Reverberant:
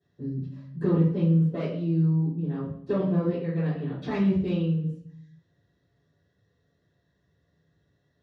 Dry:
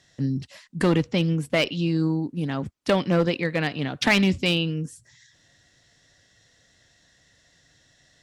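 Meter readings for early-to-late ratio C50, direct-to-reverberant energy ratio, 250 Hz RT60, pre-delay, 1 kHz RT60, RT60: 3.5 dB, -16.0 dB, 0.90 s, 3 ms, 0.60 s, 0.60 s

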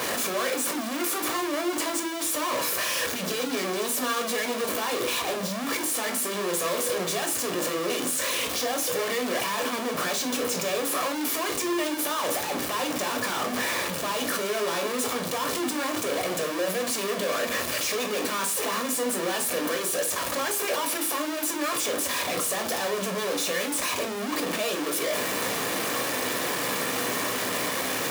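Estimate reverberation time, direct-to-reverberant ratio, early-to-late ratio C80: 0.40 s, 4.5 dB, 18.0 dB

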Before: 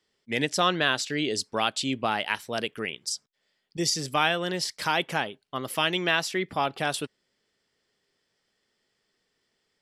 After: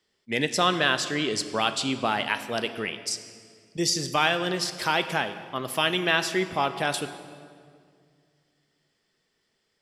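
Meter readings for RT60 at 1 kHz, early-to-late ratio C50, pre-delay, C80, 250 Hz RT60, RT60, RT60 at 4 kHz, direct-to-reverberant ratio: 2.0 s, 11.5 dB, 3 ms, 12.5 dB, 2.7 s, 2.1 s, 1.5 s, 9.5 dB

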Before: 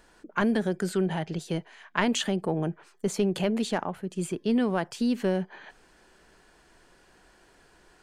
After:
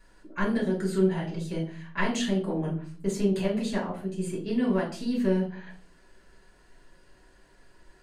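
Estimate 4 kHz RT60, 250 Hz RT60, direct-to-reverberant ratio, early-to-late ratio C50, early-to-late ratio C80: 0.30 s, 0.70 s, -4.0 dB, 8.5 dB, 13.5 dB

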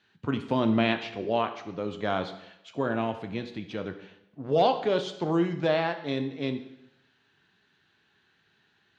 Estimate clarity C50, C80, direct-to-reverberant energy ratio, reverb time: 10.5 dB, 13.0 dB, 7.0 dB, 0.85 s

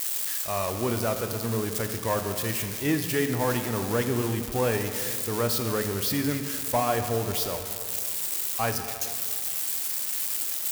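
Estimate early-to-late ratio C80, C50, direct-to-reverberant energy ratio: 8.5 dB, 7.5 dB, 6.0 dB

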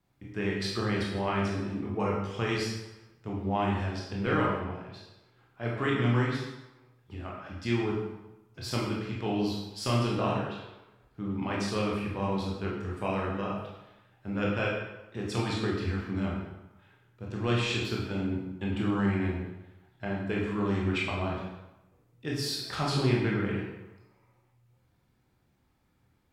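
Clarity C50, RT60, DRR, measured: 1.5 dB, 0.95 s, -4.0 dB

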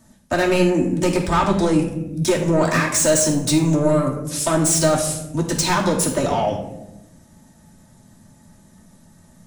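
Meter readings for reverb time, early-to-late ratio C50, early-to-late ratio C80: 0.95 s, 6.5 dB, 9.0 dB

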